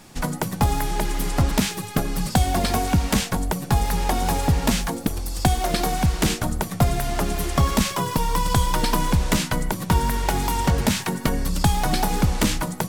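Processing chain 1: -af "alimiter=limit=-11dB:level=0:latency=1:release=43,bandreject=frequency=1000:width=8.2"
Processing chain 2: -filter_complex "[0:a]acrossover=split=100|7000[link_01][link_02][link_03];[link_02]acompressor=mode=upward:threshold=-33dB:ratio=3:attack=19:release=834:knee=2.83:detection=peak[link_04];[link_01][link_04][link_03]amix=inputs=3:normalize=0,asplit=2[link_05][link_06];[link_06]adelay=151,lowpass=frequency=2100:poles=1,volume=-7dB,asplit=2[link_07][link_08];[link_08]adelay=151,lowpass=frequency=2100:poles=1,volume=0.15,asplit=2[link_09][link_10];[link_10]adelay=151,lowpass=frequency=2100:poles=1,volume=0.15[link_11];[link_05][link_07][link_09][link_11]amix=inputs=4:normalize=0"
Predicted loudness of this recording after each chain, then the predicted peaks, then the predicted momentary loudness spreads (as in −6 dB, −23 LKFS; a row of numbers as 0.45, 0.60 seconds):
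−24.5, −22.5 LKFS; −10.0, −5.0 dBFS; 4, 4 LU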